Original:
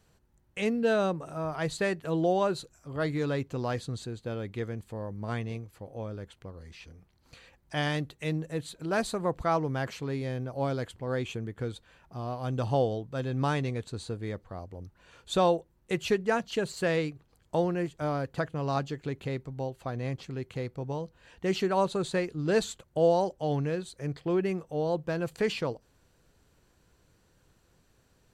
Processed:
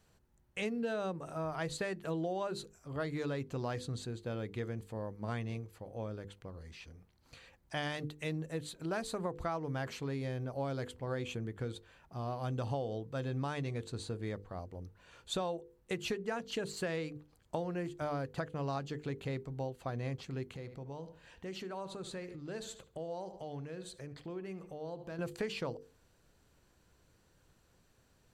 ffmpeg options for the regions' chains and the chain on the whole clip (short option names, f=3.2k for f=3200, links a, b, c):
-filter_complex "[0:a]asettb=1/sr,asplit=3[a][b][c];[a]atrim=end=20.564[d];[b]atrim=start=20.56:end=25.19,asetpts=PTS-STARTPTS,afade=t=in:d=0.004:c=qsin,afade=t=out:st=4.626:d=0.004:c=qsin,asplit=2[e][f];[f]adelay=73,lowpass=f=4.9k:p=1,volume=-16dB,asplit=2[g][h];[h]adelay=73,lowpass=f=4.9k:p=1,volume=0.31,asplit=2[i][j];[j]adelay=73,lowpass=f=4.9k:p=1,volume=0.31[k];[e][g][i][k]amix=inputs=4:normalize=0,atrim=end_sample=204183,acompressor=threshold=-40dB:ratio=3:attack=3.2:release=140:knee=1:detection=peak[l];[c]atrim=start=25.186[m];[d][l]acrossfade=d=0.004:c1=hsin:c2=qsin[n];[n][m]acrossfade=d=0.004:c1=qsin:c2=hsin,bandreject=f=50:t=h:w=6,bandreject=f=100:t=h:w=6,bandreject=f=150:t=h:w=6,bandreject=f=200:t=h:w=6,bandreject=f=250:t=h:w=6,bandreject=f=300:t=h:w=6,bandreject=f=350:t=h:w=6,bandreject=f=400:t=h:w=6,bandreject=f=450:t=h:w=6,bandreject=f=500:t=h:w=6,acompressor=threshold=-30dB:ratio=10,volume=-2.5dB"